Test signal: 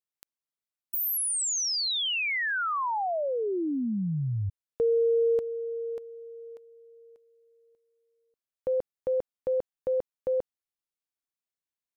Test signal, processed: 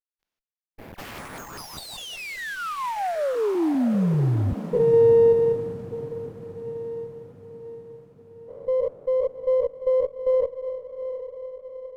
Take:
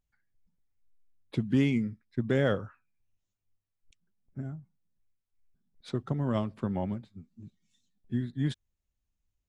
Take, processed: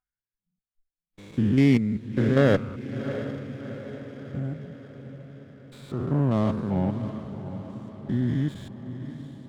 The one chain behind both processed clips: stepped spectrum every 0.2 s; spectral noise reduction 23 dB; on a send: diffused feedback echo 0.708 s, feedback 55%, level -11 dB; on the sum: running maximum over 5 samples; gain +8.5 dB

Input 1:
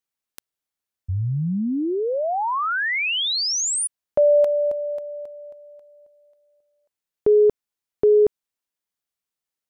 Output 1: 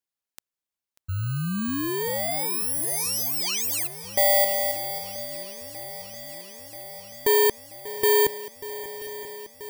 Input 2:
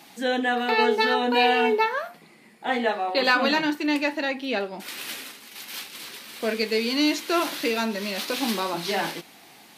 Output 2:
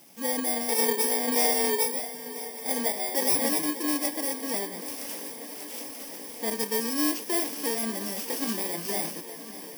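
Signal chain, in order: FFT order left unsorted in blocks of 32 samples; swung echo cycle 0.983 s, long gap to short 1.5:1, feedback 73%, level -16 dB; gain -4 dB

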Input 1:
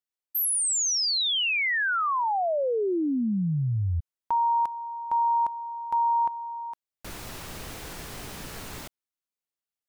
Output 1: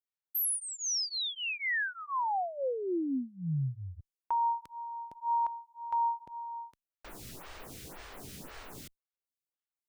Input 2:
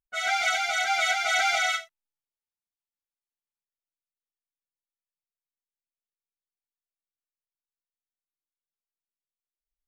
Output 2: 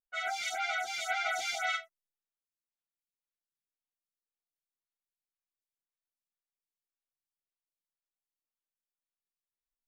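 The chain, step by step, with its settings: photocell phaser 1.9 Hz; gain -4.5 dB

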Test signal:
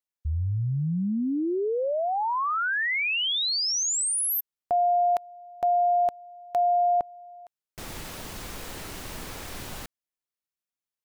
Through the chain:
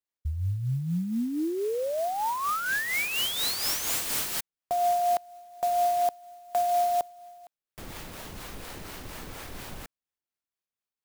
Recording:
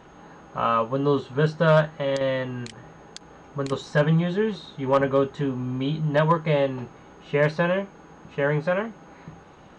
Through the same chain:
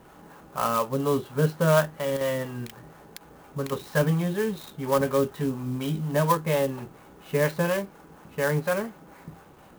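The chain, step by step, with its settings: harmonic tremolo 4.2 Hz, depth 50%, crossover 500 Hz; clock jitter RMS 0.035 ms

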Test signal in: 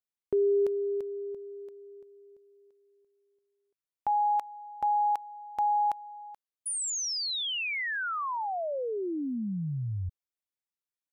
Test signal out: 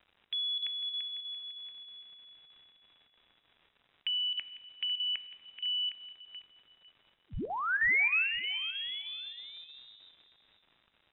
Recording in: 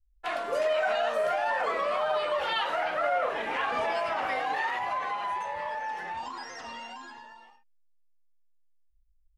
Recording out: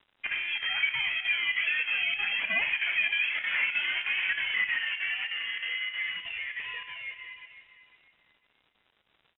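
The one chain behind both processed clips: Bessel high-pass 520 Hz, order 2; band shelf 1600 Hz +13 dB 1.1 oct; compressor 1.5:1, threshold -30 dBFS; crackle 350/s -47 dBFS; chopper 3.2 Hz, depth 65%, duty 85%; feedback echo 0.5 s, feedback 25%, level -14 dB; plate-style reverb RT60 1.9 s, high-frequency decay 0.35×, DRR 15 dB; inverted band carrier 3800 Hz; gain -2.5 dB

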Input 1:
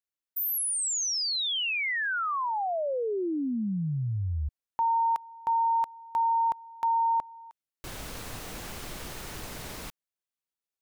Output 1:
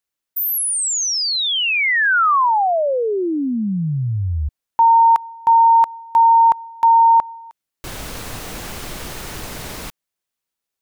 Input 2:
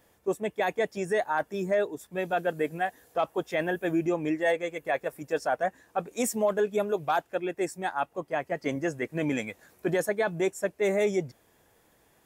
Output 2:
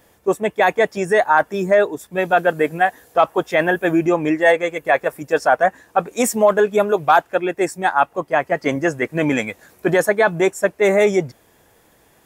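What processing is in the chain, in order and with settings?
dynamic EQ 1200 Hz, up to +6 dB, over -39 dBFS, Q 0.78; gain +9 dB

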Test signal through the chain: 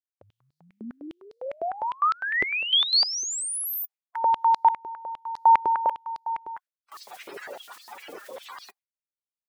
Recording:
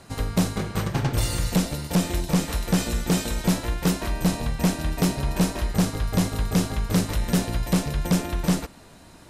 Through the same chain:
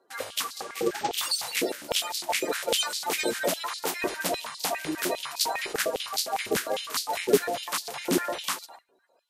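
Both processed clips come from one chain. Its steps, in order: bin magnitudes rounded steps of 30 dB; gate with hold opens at -34 dBFS; stepped high-pass 9.9 Hz 390–4400 Hz

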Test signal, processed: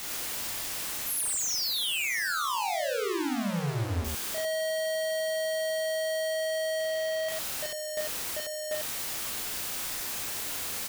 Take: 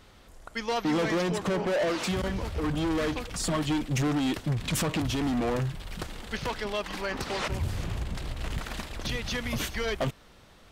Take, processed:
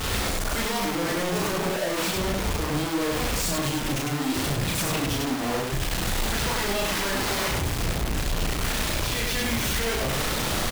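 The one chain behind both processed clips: infinite clipping; loudspeakers at several distances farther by 12 m -1 dB, 35 m -1 dB

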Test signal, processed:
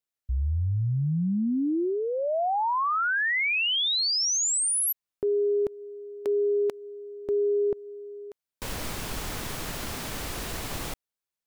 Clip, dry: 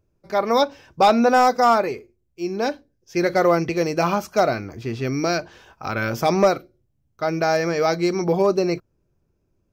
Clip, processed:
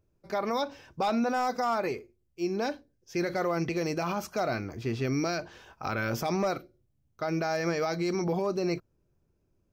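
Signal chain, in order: dynamic EQ 470 Hz, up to -3 dB, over -25 dBFS, Q 2; limiter -17.5 dBFS; gain -3.5 dB

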